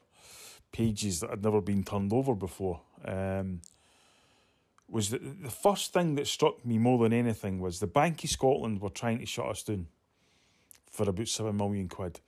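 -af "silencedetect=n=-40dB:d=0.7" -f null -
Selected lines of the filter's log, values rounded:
silence_start: 3.68
silence_end: 4.93 | silence_duration: 1.25
silence_start: 9.85
silence_end: 10.71 | silence_duration: 0.87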